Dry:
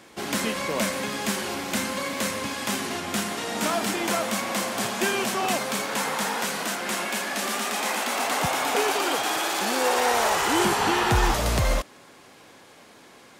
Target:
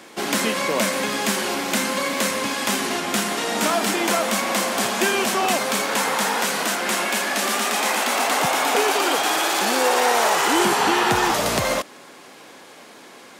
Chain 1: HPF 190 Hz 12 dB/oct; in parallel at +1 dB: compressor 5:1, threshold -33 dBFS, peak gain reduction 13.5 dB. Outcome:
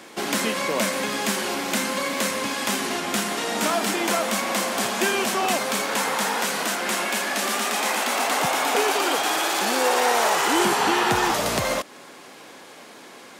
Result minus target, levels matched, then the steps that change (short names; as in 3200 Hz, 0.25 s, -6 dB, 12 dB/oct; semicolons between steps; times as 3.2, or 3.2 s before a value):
compressor: peak gain reduction +6.5 dB
change: compressor 5:1, threshold -25 dBFS, peak gain reduction 7 dB